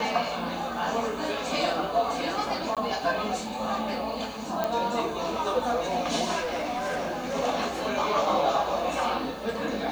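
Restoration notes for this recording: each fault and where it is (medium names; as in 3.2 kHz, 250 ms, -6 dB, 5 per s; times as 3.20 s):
2.75–2.77 s: dropout 17 ms
4.64 s: pop -13 dBFS
6.41–7.35 s: clipped -26.5 dBFS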